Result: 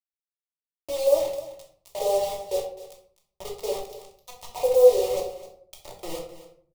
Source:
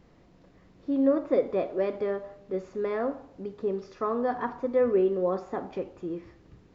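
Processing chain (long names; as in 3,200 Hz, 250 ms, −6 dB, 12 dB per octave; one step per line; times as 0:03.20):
high shelf with overshoot 2,700 Hz +10.5 dB, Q 3
downward compressor 2 to 1, threshold −33 dBFS, peak gain reduction 8.5 dB
auto-filter high-pass square 0.77 Hz 660–2,200 Hz
dead-zone distortion −58.5 dBFS
hollow resonant body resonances 290/470/760 Hz, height 18 dB, ringing for 25 ms
bit reduction 5 bits
phaser with its sweep stopped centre 650 Hz, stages 4
single-tap delay 259 ms −14.5 dB
convolution reverb RT60 0.50 s, pre-delay 3 ms, DRR −1 dB
level −4.5 dB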